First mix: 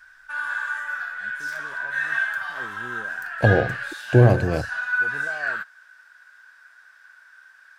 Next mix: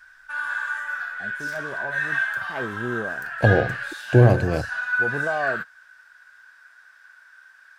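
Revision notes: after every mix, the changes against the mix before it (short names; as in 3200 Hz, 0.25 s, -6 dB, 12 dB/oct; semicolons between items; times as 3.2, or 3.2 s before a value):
first voice +12.0 dB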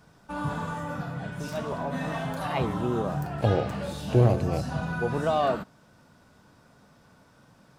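first voice: remove air absorption 460 m; second voice -6.0 dB; background: remove resonant high-pass 1600 Hz, resonance Q 16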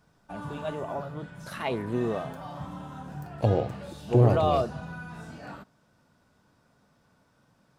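first voice: entry -0.90 s; background -8.0 dB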